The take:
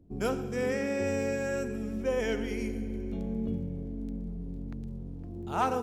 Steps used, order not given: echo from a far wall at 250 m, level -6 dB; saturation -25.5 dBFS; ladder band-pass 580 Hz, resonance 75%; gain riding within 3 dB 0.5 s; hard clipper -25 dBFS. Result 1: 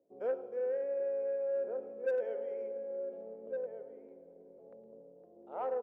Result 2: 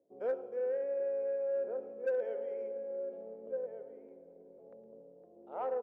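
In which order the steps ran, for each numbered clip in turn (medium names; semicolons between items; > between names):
ladder band-pass > hard clipper > gain riding > echo from a far wall > saturation; ladder band-pass > gain riding > echo from a far wall > hard clipper > saturation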